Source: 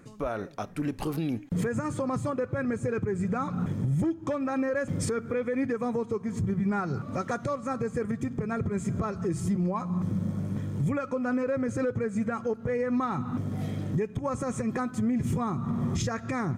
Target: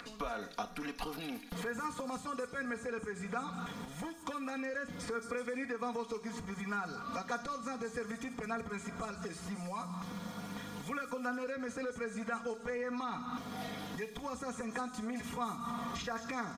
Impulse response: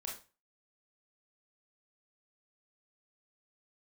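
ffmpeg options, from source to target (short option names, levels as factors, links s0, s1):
-filter_complex "[0:a]lowshelf=f=200:g=-7.5,asplit=2[s0][s1];[1:a]atrim=start_sample=2205[s2];[s1][s2]afir=irnorm=-1:irlink=0,volume=0.447[s3];[s0][s3]amix=inputs=2:normalize=0,acrossover=split=530|2100[s4][s5][s6];[s4]acompressor=threshold=0.00891:ratio=4[s7];[s5]acompressor=threshold=0.00708:ratio=4[s8];[s6]acompressor=threshold=0.00178:ratio=4[s9];[s7][s8][s9]amix=inputs=3:normalize=0,aecho=1:1:4.2:0.81,acrossover=split=460|4500[s10][s11][s12];[s11]acompressor=mode=upward:threshold=0.00501:ratio=2.5[s13];[s12]aecho=1:1:220|374|481.8|557.3|610.1:0.631|0.398|0.251|0.158|0.1[s14];[s10][s13][s14]amix=inputs=3:normalize=0,aresample=32000,aresample=44100,equalizer=f=125:t=o:w=1:g=-10,equalizer=f=250:t=o:w=1:g=-6,equalizer=f=500:t=o:w=1:g=-8,equalizer=f=2000:t=o:w=1:g=-4,equalizer=f=4000:t=o:w=1:g=5,equalizer=f=8000:t=o:w=1:g=-7,volume=1.58"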